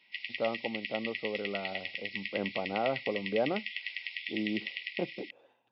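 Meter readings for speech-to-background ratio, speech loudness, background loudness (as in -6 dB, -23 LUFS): 1.5 dB, -36.5 LUFS, -38.0 LUFS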